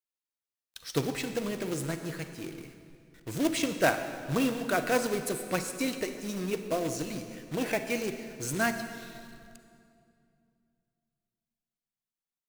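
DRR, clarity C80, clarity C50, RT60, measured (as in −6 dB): 8.0 dB, 9.5 dB, 8.5 dB, 2.5 s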